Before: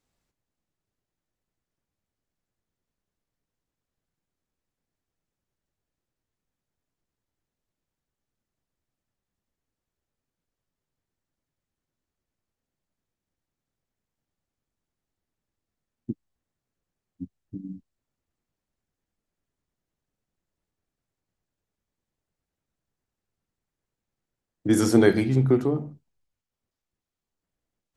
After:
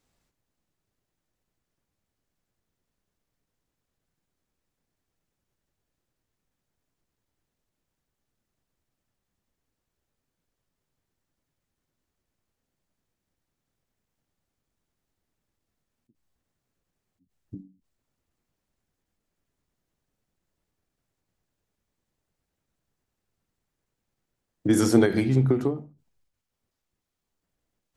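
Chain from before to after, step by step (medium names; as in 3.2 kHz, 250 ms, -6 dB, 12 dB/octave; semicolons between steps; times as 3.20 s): in parallel at 0 dB: compression, threshold -31 dBFS, peak gain reduction 17.5 dB; on the sum: endings held to a fixed fall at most 140 dB/s; trim -1.5 dB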